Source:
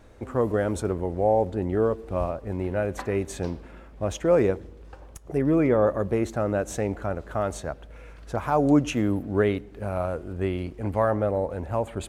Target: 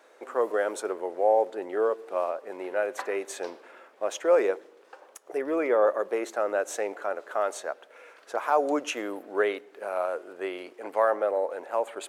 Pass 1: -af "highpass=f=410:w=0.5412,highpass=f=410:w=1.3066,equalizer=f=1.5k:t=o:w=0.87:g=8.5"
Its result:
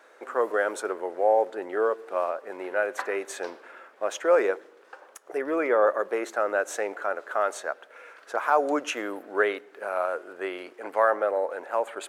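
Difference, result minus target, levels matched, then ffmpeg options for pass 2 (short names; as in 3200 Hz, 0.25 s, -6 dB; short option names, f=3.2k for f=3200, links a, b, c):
2000 Hz band +4.0 dB
-af "highpass=f=410:w=0.5412,highpass=f=410:w=1.3066,equalizer=f=1.5k:t=o:w=0.87:g=2.5"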